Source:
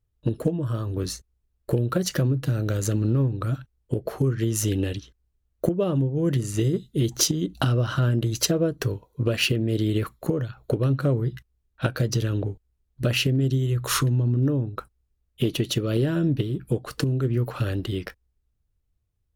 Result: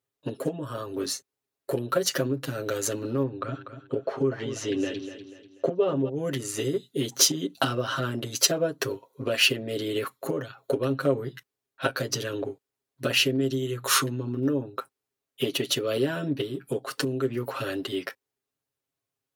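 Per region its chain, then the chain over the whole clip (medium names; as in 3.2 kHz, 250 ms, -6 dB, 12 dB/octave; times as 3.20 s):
3.23–6.09 s: distance through air 150 m + feedback delay 244 ms, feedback 38%, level -10.5 dB
whole clip: high-pass 340 Hz 12 dB/octave; comb 7.4 ms, depth 91%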